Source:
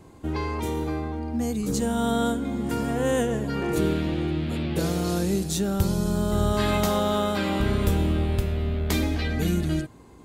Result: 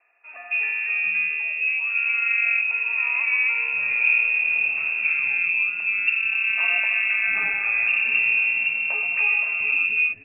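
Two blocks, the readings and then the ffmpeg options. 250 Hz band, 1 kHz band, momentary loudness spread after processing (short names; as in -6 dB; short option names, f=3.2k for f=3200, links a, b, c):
under -30 dB, -9.0 dB, 4 LU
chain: -filter_complex "[0:a]equalizer=f=300:w=2.4:g=8.5,lowpass=f=2.4k:t=q:w=0.5098,lowpass=f=2.4k:t=q:w=0.6013,lowpass=f=2.4k:t=q:w=0.9,lowpass=f=2.4k:t=q:w=2.563,afreqshift=-2800,acrossover=split=370|1400[a][b][c];[c]adelay=270[d];[a]adelay=700[e];[e][b][d]amix=inputs=3:normalize=0"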